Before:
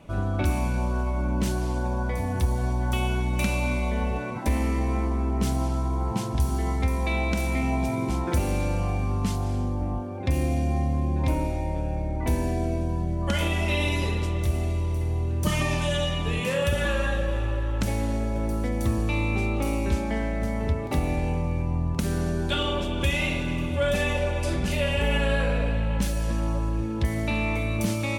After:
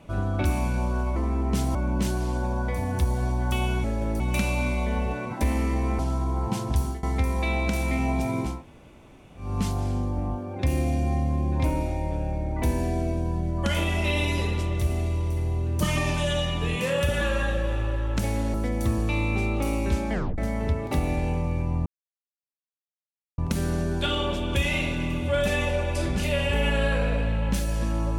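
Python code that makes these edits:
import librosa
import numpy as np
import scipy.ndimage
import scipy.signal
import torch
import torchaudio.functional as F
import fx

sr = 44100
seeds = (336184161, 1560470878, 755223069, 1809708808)

y = fx.edit(x, sr, fx.move(start_s=5.04, length_s=0.59, to_s=1.16),
    fx.fade_out_to(start_s=6.38, length_s=0.29, curve='qsin', floor_db=-20.0),
    fx.room_tone_fill(start_s=8.17, length_s=0.94, crossfade_s=0.24),
    fx.move(start_s=18.18, length_s=0.36, to_s=3.25),
    fx.tape_stop(start_s=20.13, length_s=0.25),
    fx.insert_silence(at_s=21.86, length_s=1.52), tone=tone)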